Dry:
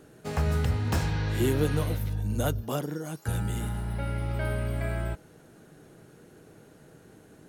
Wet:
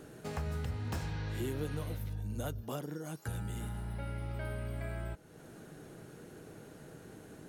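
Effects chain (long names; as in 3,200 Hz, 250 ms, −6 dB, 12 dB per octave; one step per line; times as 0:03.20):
downward compressor 2 to 1, threshold −47 dBFS, peak gain reduction 14 dB
level +2 dB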